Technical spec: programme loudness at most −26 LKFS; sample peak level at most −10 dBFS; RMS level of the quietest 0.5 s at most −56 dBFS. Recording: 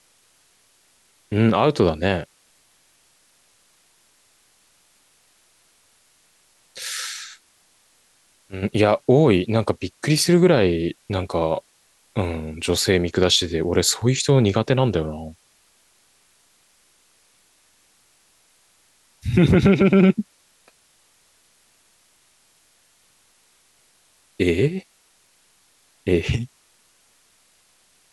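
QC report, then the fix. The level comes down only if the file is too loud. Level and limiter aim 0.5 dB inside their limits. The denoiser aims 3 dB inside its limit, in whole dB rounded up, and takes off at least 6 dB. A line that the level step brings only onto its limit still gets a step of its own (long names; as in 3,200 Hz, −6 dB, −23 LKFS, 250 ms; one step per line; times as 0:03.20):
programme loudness −20.0 LKFS: out of spec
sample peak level −5.0 dBFS: out of spec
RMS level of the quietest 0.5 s −60 dBFS: in spec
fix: level −6.5 dB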